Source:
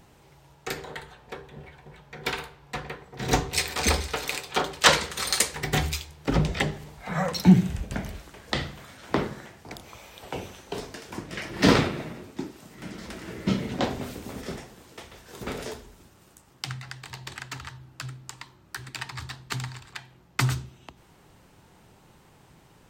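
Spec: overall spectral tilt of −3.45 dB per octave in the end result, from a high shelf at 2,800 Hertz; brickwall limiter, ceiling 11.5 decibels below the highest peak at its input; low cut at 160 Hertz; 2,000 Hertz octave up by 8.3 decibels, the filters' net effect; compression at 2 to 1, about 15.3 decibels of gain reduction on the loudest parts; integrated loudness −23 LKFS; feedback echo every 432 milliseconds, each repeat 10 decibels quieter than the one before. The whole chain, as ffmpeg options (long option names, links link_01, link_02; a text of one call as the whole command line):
ffmpeg -i in.wav -af "highpass=160,equalizer=frequency=2000:width_type=o:gain=6.5,highshelf=frequency=2800:gain=8.5,acompressor=threshold=-35dB:ratio=2,alimiter=limit=-20.5dB:level=0:latency=1,aecho=1:1:432|864|1296|1728:0.316|0.101|0.0324|0.0104,volume=13dB" out.wav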